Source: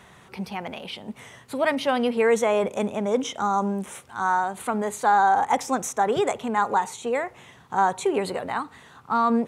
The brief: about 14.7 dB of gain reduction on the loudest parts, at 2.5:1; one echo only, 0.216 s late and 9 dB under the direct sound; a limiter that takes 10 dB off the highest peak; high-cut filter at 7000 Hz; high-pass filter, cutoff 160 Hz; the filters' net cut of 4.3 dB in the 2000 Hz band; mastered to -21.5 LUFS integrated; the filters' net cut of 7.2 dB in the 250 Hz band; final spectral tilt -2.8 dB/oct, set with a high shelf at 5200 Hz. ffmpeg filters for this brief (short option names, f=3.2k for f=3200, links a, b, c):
-af "highpass=160,lowpass=7k,equalizer=f=250:t=o:g=-7.5,equalizer=f=2k:t=o:g=-7,highshelf=f=5.2k:g=9,acompressor=threshold=-40dB:ratio=2.5,alimiter=level_in=9.5dB:limit=-24dB:level=0:latency=1,volume=-9.5dB,aecho=1:1:216:0.355,volume=21dB"